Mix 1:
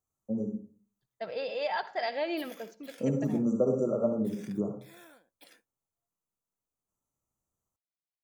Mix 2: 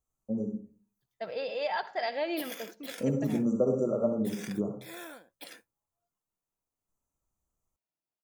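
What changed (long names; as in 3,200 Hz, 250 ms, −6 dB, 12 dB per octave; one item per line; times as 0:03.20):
first voice: remove high-pass filter 71 Hz 24 dB per octave
background +10.0 dB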